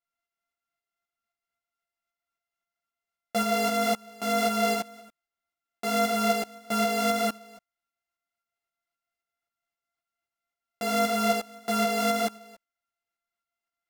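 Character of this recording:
a buzz of ramps at a fixed pitch in blocks of 64 samples
tremolo saw up 3.8 Hz, depth 45%
a shimmering, thickened sound

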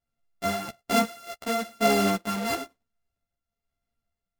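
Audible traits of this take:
a buzz of ramps at a fixed pitch in blocks of 64 samples
tremolo triangle 1.1 Hz, depth 50%
a shimmering, thickened sound

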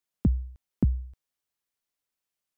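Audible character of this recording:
background noise floor −88 dBFS
spectral slope −12.0 dB per octave

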